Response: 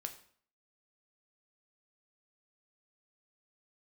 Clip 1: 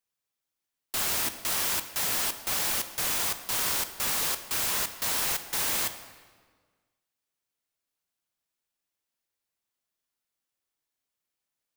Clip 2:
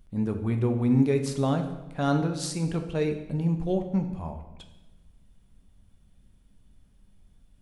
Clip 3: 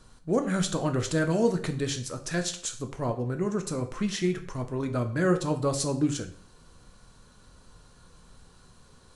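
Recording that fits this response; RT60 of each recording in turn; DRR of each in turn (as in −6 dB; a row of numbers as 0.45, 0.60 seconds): 3; 1.6, 1.0, 0.55 seconds; 9.5, 5.0, 5.5 decibels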